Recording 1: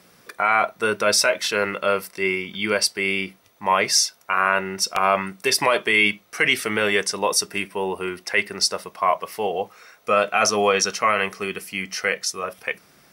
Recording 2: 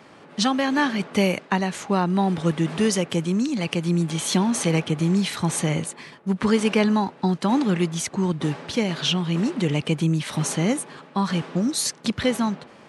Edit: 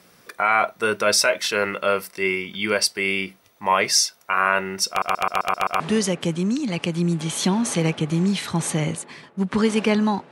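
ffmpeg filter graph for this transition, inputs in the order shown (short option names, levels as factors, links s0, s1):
-filter_complex "[0:a]apad=whole_dur=10.31,atrim=end=10.31,asplit=7[s0][s1][s2][s3][s4][s5][s6];[s0]atrim=end=5.022[s7];[s1]atrim=start=4.888:end=5.022[s8];[s2]atrim=start=4.888:end=5.022[s9];[s3]atrim=start=4.888:end=5.022[s10];[s4]atrim=start=4.888:end=5.022[s11];[s5]atrim=start=4.888:end=5.022[s12];[s6]atrim=start=4.888:end=5.022[s13];[1:a]atrim=start=2.688:end=7.2[s14];[s7][s8]acrossfade=d=0.004:c1=hsin:c2=hsin[s15];[s15][s9]acrossfade=d=0.004:c1=hsin:c2=hsin[s16];[s16][s10]acrossfade=d=0.004:c1=hsin:c2=hsin[s17];[s17][s11]acrossfade=d=0.004:c1=hsin:c2=hsin[s18];[s18][s12]acrossfade=d=0.004:c1=hsin:c2=hsin[s19];[s19][s13]acrossfade=d=0.004:c1=hsin:c2=hsin[s20];[s20][s14]acrossfade=d=0.004:c1=hsin:c2=hsin"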